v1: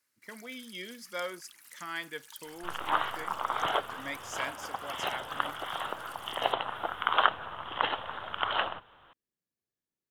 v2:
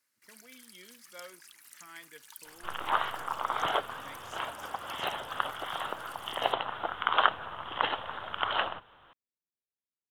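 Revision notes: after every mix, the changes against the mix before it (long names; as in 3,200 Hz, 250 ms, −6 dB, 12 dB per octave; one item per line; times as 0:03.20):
speech −12.0 dB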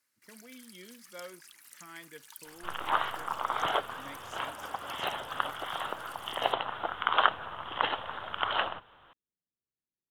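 speech: add low-shelf EQ 470 Hz +9 dB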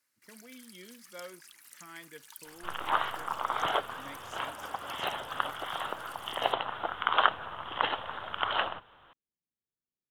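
nothing changed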